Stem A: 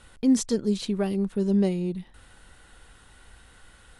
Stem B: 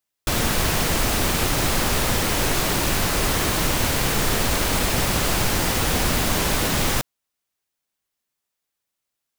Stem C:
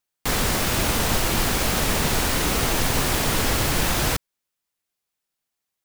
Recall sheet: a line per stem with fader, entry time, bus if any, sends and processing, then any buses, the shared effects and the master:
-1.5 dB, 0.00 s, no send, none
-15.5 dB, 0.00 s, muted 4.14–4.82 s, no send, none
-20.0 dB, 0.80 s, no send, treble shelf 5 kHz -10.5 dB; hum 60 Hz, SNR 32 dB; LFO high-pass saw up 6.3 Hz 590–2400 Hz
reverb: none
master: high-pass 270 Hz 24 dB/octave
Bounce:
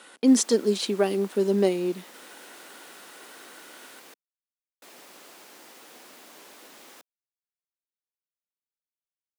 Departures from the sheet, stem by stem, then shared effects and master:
stem A -1.5 dB -> +6.0 dB; stem B -15.5 dB -> -26.0 dB; stem C: muted

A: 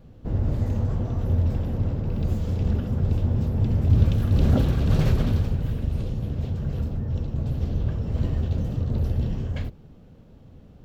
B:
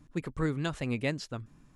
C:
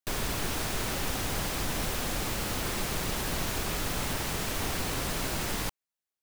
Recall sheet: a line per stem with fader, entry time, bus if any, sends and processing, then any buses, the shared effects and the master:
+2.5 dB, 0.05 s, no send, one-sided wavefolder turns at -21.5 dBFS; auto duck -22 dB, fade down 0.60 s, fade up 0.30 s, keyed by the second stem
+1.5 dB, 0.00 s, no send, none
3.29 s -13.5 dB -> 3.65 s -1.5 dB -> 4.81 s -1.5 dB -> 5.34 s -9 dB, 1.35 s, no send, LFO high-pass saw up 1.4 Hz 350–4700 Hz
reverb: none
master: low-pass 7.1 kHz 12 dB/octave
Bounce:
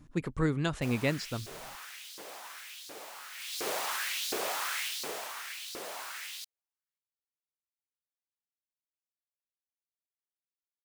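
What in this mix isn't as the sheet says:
stem A: muted; stem C: entry 1.35 s -> 0.75 s; master: missing low-pass 7.1 kHz 12 dB/octave

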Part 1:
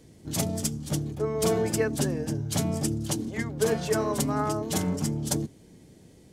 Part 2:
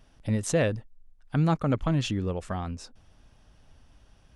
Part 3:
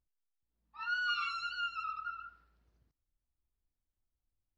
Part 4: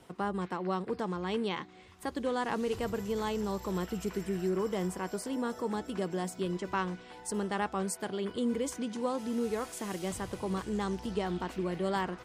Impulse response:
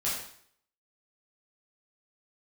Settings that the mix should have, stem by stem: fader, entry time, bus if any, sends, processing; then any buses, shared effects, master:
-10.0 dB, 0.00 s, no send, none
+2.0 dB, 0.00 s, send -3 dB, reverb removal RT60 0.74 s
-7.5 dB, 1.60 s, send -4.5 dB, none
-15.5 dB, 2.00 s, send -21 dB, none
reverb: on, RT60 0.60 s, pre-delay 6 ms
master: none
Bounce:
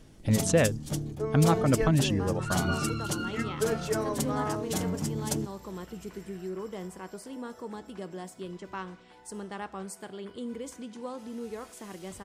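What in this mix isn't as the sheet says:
stem 1 -10.0 dB -> -3.5 dB; stem 2: send off; stem 4 -15.5 dB -> -6.5 dB

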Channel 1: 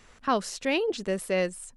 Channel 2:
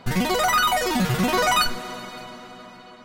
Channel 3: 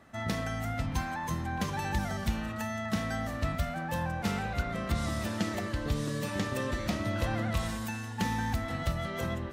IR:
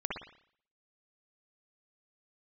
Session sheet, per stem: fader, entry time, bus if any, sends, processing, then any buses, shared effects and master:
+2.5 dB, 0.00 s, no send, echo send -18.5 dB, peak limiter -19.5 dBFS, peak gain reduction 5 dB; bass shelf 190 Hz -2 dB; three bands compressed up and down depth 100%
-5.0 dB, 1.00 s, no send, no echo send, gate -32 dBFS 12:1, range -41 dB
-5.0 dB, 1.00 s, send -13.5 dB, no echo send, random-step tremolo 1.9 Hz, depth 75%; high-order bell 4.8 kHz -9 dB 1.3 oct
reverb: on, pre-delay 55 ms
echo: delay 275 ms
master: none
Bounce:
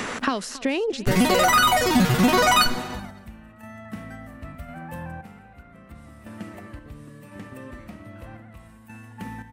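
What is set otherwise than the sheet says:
stem 2 -5.0 dB -> +2.0 dB; master: extra peaking EQ 260 Hz +5.5 dB 0.4 oct

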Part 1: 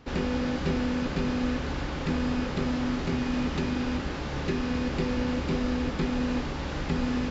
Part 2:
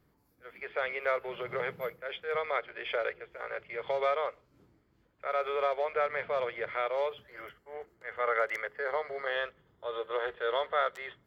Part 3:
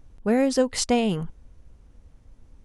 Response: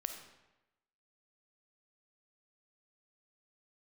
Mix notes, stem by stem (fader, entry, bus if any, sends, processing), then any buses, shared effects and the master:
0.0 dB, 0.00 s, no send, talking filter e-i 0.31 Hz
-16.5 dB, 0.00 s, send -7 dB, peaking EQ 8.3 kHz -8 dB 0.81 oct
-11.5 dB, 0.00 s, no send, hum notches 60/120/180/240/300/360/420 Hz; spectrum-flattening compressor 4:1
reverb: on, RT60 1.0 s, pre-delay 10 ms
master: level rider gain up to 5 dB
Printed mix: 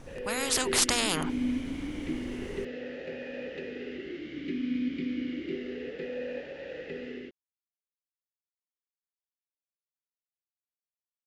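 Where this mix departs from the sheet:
stem 2: muted; stem 3 -11.5 dB -> -3.0 dB; reverb: off

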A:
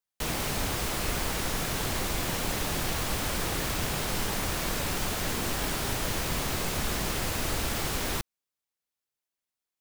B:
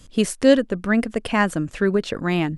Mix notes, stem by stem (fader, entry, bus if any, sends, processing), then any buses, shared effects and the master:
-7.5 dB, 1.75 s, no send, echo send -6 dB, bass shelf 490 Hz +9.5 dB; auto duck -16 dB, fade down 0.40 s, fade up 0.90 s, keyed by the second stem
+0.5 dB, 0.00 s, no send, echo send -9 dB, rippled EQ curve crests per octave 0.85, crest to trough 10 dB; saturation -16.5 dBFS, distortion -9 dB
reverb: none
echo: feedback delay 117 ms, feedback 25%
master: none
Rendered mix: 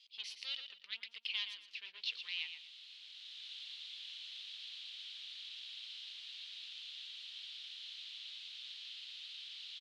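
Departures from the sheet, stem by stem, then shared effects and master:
stem A: missing bass shelf 490 Hz +9.5 dB; master: extra Butterworth band-pass 3.5 kHz, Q 2.8

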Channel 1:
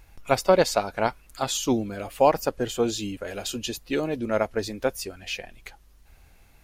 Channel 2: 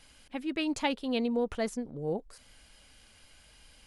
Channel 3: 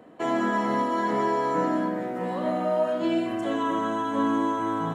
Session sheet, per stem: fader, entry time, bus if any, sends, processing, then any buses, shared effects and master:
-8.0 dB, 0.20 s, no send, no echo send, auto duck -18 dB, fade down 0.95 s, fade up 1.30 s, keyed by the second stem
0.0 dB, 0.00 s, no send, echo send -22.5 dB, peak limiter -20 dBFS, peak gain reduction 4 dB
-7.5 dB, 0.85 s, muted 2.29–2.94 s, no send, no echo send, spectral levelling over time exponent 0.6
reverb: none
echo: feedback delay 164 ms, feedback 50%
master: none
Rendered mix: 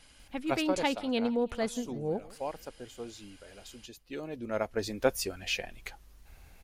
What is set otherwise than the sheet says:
stem 1 -8.0 dB -> 0.0 dB; stem 2: missing peak limiter -20 dBFS, peak gain reduction 4 dB; stem 3: muted

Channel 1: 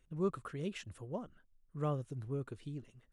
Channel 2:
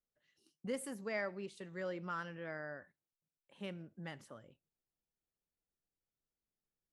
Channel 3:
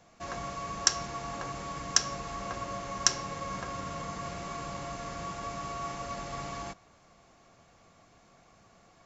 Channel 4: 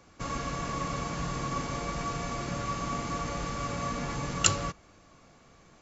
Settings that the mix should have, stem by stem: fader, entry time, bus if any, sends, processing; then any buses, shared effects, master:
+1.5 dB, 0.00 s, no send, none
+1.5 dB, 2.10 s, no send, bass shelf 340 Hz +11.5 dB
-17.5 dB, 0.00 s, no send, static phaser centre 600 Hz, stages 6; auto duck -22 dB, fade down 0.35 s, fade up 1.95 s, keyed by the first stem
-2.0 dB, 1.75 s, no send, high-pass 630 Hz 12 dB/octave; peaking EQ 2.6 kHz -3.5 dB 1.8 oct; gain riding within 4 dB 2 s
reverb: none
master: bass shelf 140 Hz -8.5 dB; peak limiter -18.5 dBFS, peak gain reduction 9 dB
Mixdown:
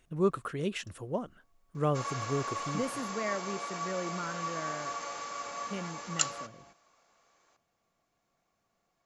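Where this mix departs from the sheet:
stem 1 +1.5 dB -> +8.5 dB; stem 3: missing static phaser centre 600 Hz, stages 6; master: missing peak limiter -18.5 dBFS, peak gain reduction 9 dB

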